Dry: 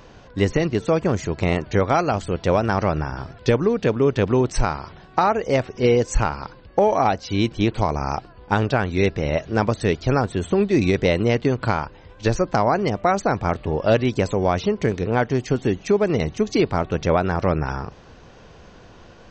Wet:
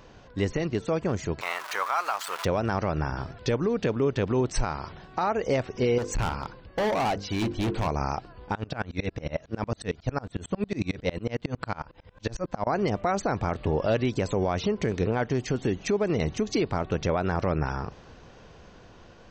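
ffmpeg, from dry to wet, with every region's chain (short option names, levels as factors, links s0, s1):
-filter_complex "[0:a]asettb=1/sr,asplit=3[s0][s1][s2];[s0]atrim=end=1.414[s3];[s1]atrim=start=1.41:end=2.45,asetpts=PTS-STARTPTS,afade=t=in:d=0.004:c=qsin,afade=t=out:st=1.036:d=0.004:c=qsin,aeval=exprs='val(0)+0.5*0.0447*sgn(val(0))':c=same,highpass=f=1100:t=q:w=2.4[s4];[s2]atrim=start=2.446[s5];[s3][s4]acrossfade=d=0.004:c1=hsin:c2=qsin[s6];[s6][s5]acrossfade=d=0.004:c1=qsin:c2=hsin,asettb=1/sr,asplit=3[s7][s8][s9];[s7]atrim=end=5.984[s10];[s8]atrim=start=5.98:end=7.88,asetpts=PTS-STARTPTS,afade=t=in:d=0.004:c=qsin,afade=t=out:st=1.896:d=0.004:c=qsin,highshelf=f=6000:g=-5.5,bandreject=f=50:t=h:w=6,bandreject=f=100:t=h:w=6,bandreject=f=150:t=h:w=6,bandreject=f=200:t=h:w=6,bandreject=f=250:t=h:w=6,bandreject=f=300:t=h:w=6,bandreject=f=350:t=h:w=6,bandreject=f=400:t=h:w=6,bandreject=f=450:t=h:w=6,bandreject=f=500:t=h:w=6,asoftclip=type=hard:threshold=0.0794[s11];[s9]atrim=start=7.876[s12];[s10][s11]acrossfade=d=0.004:c1=hsin:c2=qsin[s13];[s13][s12]acrossfade=d=0.004:c1=qsin:c2=hsin,asettb=1/sr,asplit=3[s14][s15][s16];[s14]atrim=end=8.554[s17];[s15]atrim=start=8.55:end=12.67,asetpts=PTS-STARTPTS,afade=t=in:d=0.004:c=qsin,afade=t=out:st=4.116:d=0.004:c=qsin,bandreject=f=380:w=6.9,aeval=exprs='val(0)*pow(10,-29*if(lt(mod(-11*n/s,1),2*abs(-11)/1000),1-mod(-11*n/s,1)/(2*abs(-11)/1000),(mod(-11*n/s,1)-2*abs(-11)/1000)/(1-2*abs(-11)/1000))/20)':c=same[s18];[s16]atrim=start=12.666[s19];[s17][s18]acrossfade=d=0.004:c1=hsin:c2=qsin[s20];[s20][s19]acrossfade=d=0.004:c1=qsin:c2=hsin,dynaudnorm=f=350:g=13:m=3.76,alimiter=limit=0.282:level=0:latency=1:release=173,volume=0.562"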